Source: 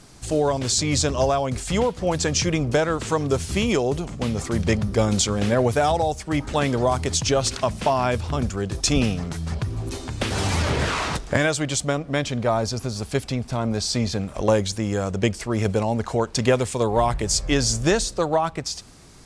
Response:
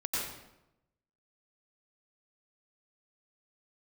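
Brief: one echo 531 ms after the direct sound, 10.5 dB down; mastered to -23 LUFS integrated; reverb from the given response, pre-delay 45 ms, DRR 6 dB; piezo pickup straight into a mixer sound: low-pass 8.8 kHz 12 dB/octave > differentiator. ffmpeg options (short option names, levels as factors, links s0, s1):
-filter_complex "[0:a]aecho=1:1:531:0.299,asplit=2[s0][s1];[1:a]atrim=start_sample=2205,adelay=45[s2];[s1][s2]afir=irnorm=-1:irlink=0,volume=0.266[s3];[s0][s3]amix=inputs=2:normalize=0,lowpass=8800,aderivative,volume=2.66"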